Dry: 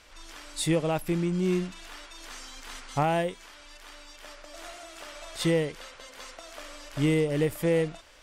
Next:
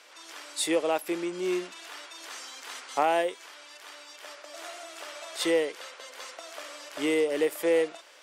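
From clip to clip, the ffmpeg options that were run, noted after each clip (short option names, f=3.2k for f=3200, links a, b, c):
-af "highpass=f=340:w=0.5412,highpass=f=340:w=1.3066,volume=2dB"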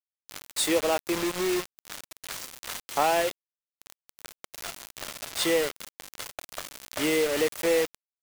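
-filter_complex "[0:a]asubboost=boost=3:cutoff=160,asplit=2[a][b];[b]acompressor=threshold=-35dB:ratio=20,volume=-0.5dB[c];[a][c]amix=inputs=2:normalize=0,acrusher=bits=4:mix=0:aa=0.000001"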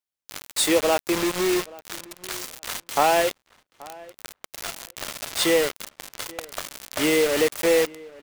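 -filter_complex "[0:a]asplit=2[a][b];[b]adelay=830,lowpass=f=2k:p=1,volume=-21dB,asplit=2[c][d];[d]adelay=830,lowpass=f=2k:p=1,volume=0.16[e];[a][c][e]amix=inputs=3:normalize=0,volume=4.5dB"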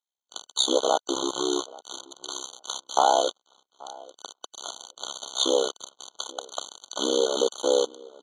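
-af "highpass=500,equalizer=f=590:t=q:w=4:g=-5,equalizer=f=1.3k:t=q:w=4:g=-9,equalizer=f=2.2k:t=q:w=4:g=7,equalizer=f=5.8k:t=q:w=4:g=5,lowpass=f=7.3k:w=0.5412,lowpass=f=7.3k:w=1.3066,tremolo=f=66:d=1,afftfilt=real='re*eq(mod(floor(b*sr/1024/1500),2),0)':imag='im*eq(mod(floor(b*sr/1024/1500),2),0)':win_size=1024:overlap=0.75,volume=6.5dB"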